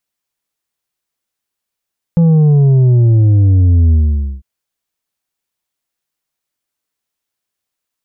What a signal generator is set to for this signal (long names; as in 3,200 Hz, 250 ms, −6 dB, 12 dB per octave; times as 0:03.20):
bass drop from 170 Hz, over 2.25 s, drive 5.5 dB, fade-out 0.50 s, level −6.5 dB